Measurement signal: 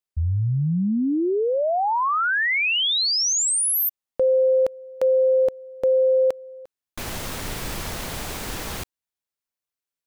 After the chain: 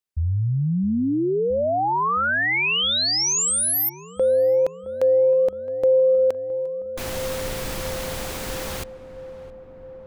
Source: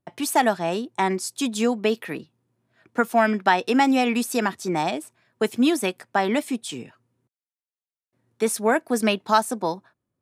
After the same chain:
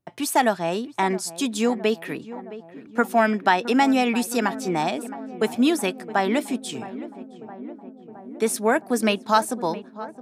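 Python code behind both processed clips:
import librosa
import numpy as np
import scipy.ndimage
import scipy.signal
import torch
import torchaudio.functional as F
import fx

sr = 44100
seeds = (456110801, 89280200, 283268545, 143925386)

y = fx.echo_filtered(x, sr, ms=666, feedback_pct=78, hz=1300.0, wet_db=-15)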